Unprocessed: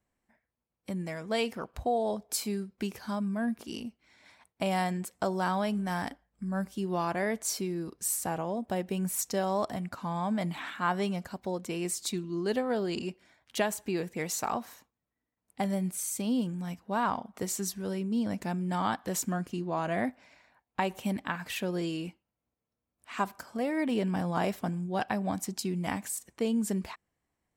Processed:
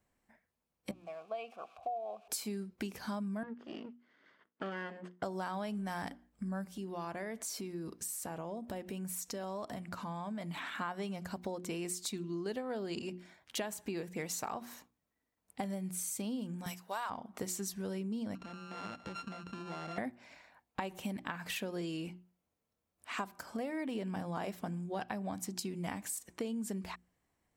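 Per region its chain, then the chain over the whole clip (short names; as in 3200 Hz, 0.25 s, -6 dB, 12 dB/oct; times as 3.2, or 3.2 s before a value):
0.91–2.28 switching spikes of -32 dBFS + vowel filter a + high shelf 6900 Hz -7 dB
3.43–5.23 minimum comb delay 0.62 ms + HPF 340 Hz + tape spacing loss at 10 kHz 39 dB
6.71–10.75 notch 790 Hz, Q 15 + compressor 3:1, threshold -41 dBFS
16.66–17.1 HPF 720 Hz + high shelf 4000 Hz +11.5 dB
18.35–19.98 sample sorter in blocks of 32 samples + air absorption 120 m + compressor 12:1, threshold -41 dBFS
whole clip: notches 60/120/180/240/300/360 Hz; compressor 5:1, threshold -39 dBFS; gain +2.5 dB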